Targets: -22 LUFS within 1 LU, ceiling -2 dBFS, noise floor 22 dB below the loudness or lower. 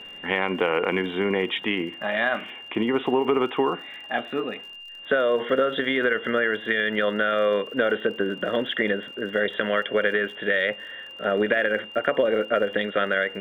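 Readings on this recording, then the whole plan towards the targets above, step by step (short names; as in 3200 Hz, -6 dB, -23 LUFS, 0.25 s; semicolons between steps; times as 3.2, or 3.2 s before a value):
ticks 59/s; steady tone 2800 Hz; tone level -39 dBFS; loudness -24.5 LUFS; peak -6.5 dBFS; loudness target -22.0 LUFS
-> de-click; notch 2800 Hz, Q 30; gain +2.5 dB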